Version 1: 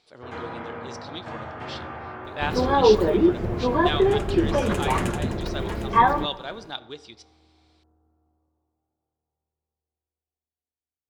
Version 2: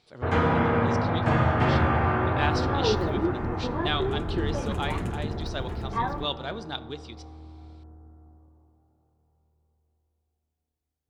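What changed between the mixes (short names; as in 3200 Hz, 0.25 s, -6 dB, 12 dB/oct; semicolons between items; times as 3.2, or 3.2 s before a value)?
first sound +11.0 dB; second sound -11.5 dB; master: add tone controls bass +8 dB, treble -2 dB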